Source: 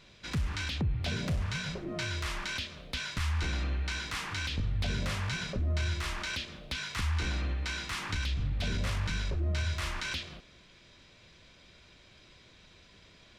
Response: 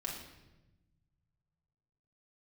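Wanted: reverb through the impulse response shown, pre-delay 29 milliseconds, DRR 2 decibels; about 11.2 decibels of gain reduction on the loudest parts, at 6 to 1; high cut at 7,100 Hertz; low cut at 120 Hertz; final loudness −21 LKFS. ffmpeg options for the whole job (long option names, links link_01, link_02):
-filter_complex "[0:a]highpass=120,lowpass=7100,acompressor=threshold=-42dB:ratio=6,asplit=2[link_01][link_02];[1:a]atrim=start_sample=2205,adelay=29[link_03];[link_02][link_03]afir=irnorm=-1:irlink=0,volume=-3dB[link_04];[link_01][link_04]amix=inputs=2:normalize=0,volume=21dB"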